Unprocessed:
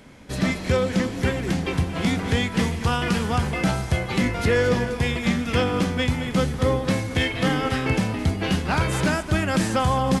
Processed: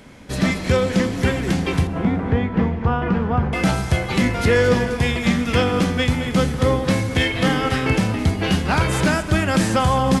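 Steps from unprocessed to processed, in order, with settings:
0:01.87–0:03.53: low-pass filter 1,300 Hz 12 dB per octave
dense smooth reverb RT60 2.1 s, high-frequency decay 0.85×, DRR 14.5 dB
level +3.5 dB

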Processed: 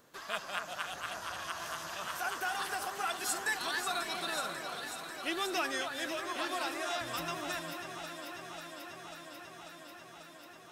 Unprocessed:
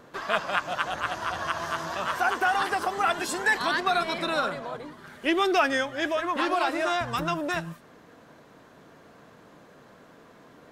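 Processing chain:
first-order pre-emphasis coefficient 0.8
on a send: delay that swaps between a low-pass and a high-pass 271 ms, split 2,000 Hz, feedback 88%, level −7 dB

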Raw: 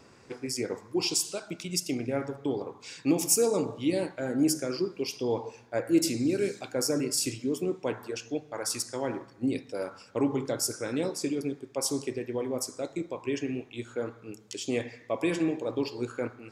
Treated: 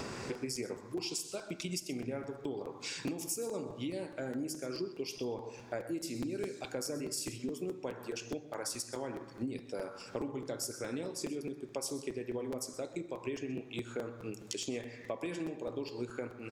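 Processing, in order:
downward compressor 6 to 1, threshold −56 dBFS, peak gain reduction 33.5 dB
single-tap delay 128 ms −17 dB
on a send at −16.5 dB: convolution reverb RT60 1.2 s, pre-delay 5 ms
on the sum: regular buffer underruns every 0.21 s, samples 256, repeat, from 0:00.34
level +17 dB

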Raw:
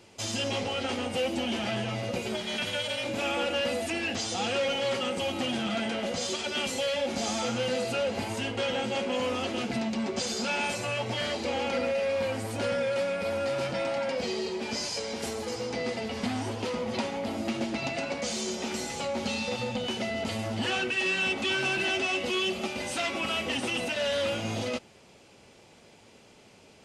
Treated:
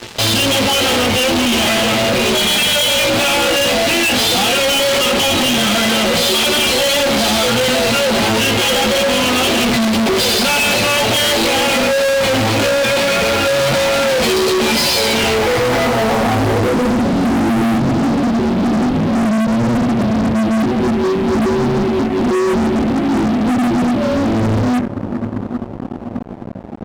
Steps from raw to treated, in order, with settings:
high-shelf EQ 3,700 Hz −4.5 dB
brickwall limiter −25 dBFS, peak gain reduction 5 dB
multi-voice chorus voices 2, 0.14 Hz, delay 17 ms, depth 4.1 ms
low-pass filter sweep 3,900 Hz → 250 Hz, 0:15.06–0:17.07
on a send: echo machine with several playback heads 395 ms, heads first and second, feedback 65%, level −22.5 dB
on the sum: fuzz pedal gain 48 dB, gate −56 dBFS

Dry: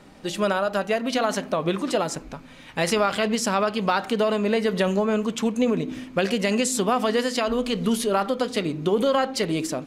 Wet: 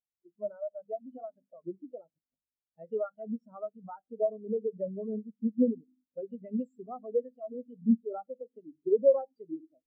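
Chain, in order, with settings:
mains-hum notches 50/100/150/200 Hz
hum with harmonics 50 Hz, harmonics 16, −37 dBFS −1 dB per octave
every bin expanded away from the loudest bin 4 to 1
level −4 dB

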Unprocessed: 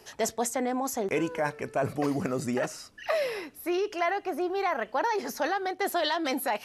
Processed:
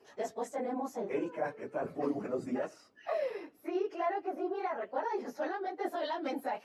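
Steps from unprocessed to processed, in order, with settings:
random phases in long frames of 50 ms
high-pass filter 360 Hz 12 dB per octave
spectral tilt −4 dB per octave
level −8 dB

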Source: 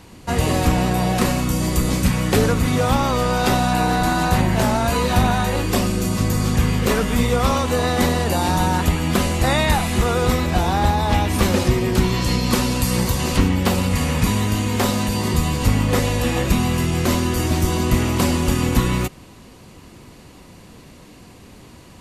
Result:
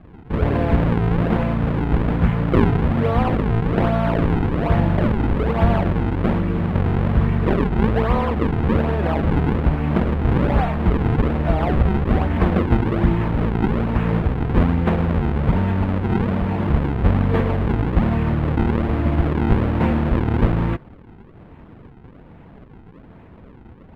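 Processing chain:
sample-and-hold swept by an LFO 40×, swing 160% 1.3 Hz
high-frequency loss of the air 480 metres
wrong playback speed 48 kHz file played as 44.1 kHz
level +1 dB

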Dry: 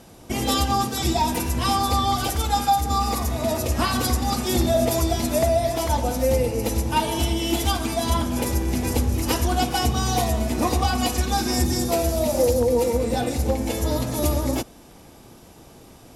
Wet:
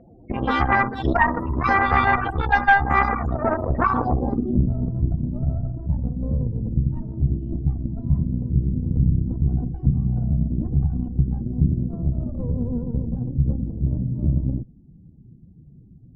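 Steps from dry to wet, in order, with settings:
spectral peaks only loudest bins 16
harmonic generator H 4 −9 dB, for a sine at −9.5 dBFS
low-pass filter sweep 1,900 Hz → 160 Hz, 0:03.73–0:04.65

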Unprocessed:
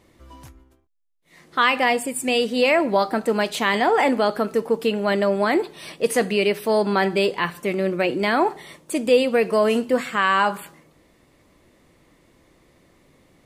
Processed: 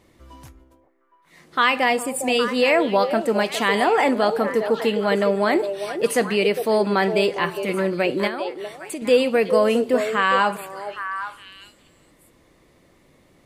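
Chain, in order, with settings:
0:08.27–0:09.02: downward compressor 4 to 1, threshold −30 dBFS, peak gain reduction 13 dB
echo through a band-pass that steps 407 ms, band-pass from 520 Hz, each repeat 1.4 octaves, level −5.5 dB

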